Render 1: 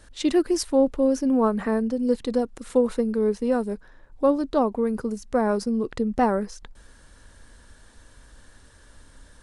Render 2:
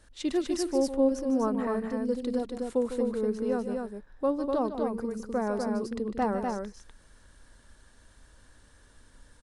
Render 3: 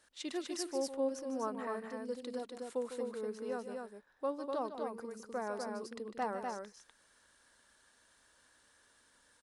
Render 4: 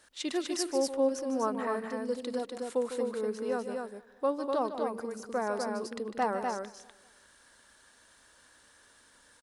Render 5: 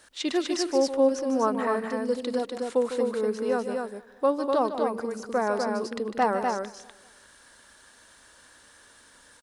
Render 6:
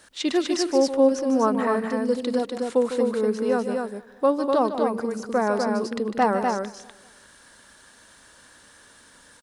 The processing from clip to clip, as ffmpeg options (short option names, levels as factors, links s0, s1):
-af "aecho=1:1:151.6|247.8:0.282|0.631,volume=0.422"
-af "highpass=f=760:p=1,volume=0.631"
-filter_complex "[0:a]asplit=2[s0][s1];[s1]adelay=198,lowpass=f=2200:p=1,volume=0.0841,asplit=2[s2][s3];[s3]adelay=198,lowpass=f=2200:p=1,volume=0.49,asplit=2[s4][s5];[s5]adelay=198,lowpass=f=2200:p=1,volume=0.49[s6];[s0][s2][s4][s6]amix=inputs=4:normalize=0,volume=2.24"
-filter_complex "[0:a]acrossover=split=6900[s0][s1];[s1]acompressor=threshold=0.00126:ratio=4:attack=1:release=60[s2];[s0][s2]amix=inputs=2:normalize=0,volume=2"
-af "equalizer=f=170:w=1.1:g=5,volume=1.33"